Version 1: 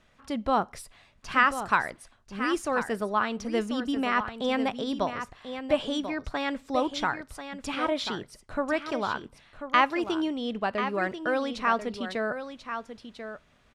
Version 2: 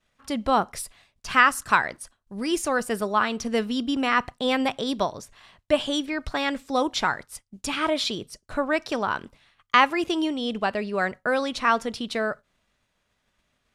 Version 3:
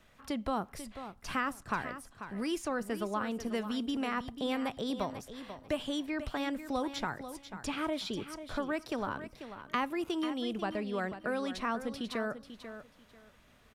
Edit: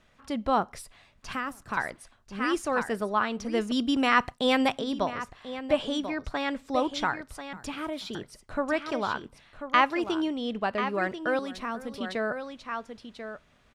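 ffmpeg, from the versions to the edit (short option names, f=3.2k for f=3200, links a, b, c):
-filter_complex "[2:a]asplit=3[a][b][c];[0:a]asplit=5[d][e][f][g][h];[d]atrim=end=1.332[i];[a]atrim=start=1.328:end=1.772[j];[e]atrim=start=1.768:end=3.722[k];[1:a]atrim=start=3.718:end=4.792[l];[f]atrim=start=4.788:end=7.532[m];[b]atrim=start=7.528:end=8.152[n];[g]atrim=start=8.148:end=11.392[o];[c]atrim=start=11.388:end=11.982[p];[h]atrim=start=11.978[q];[i][j]acrossfade=d=0.004:c1=hsin:c2=hsin[r];[r][k]acrossfade=d=0.004:c1=hsin:c2=hsin[s];[s][l]acrossfade=d=0.004:c1=hsin:c2=hsin[t];[t][m]acrossfade=d=0.004:c1=hsin:c2=hsin[u];[u][n]acrossfade=d=0.004:c1=hsin:c2=hsin[v];[v][o]acrossfade=d=0.004:c1=hsin:c2=hsin[w];[w][p]acrossfade=d=0.004:c1=hsin:c2=hsin[x];[x][q]acrossfade=d=0.004:c1=hsin:c2=hsin"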